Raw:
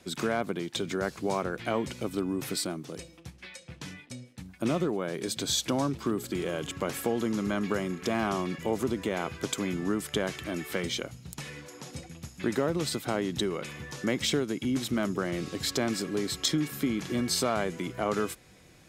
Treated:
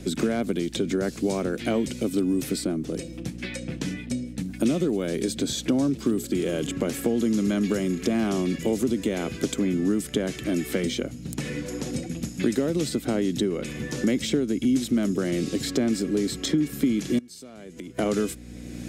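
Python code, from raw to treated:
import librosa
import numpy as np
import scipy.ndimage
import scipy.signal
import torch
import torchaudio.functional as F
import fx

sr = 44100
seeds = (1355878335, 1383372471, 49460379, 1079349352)

y = fx.add_hum(x, sr, base_hz=60, snr_db=18)
y = fx.gate_flip(y, sr, shuts_db=-27.0, range_db=-25, at=(17.18, 17.99))
y = fx.graphic_eq(y, sr, hz=(250, 500, 1000, 8000), db=(9, 3, -9, 4))
y = fx.band_squash(y, sr, depth_pct=70)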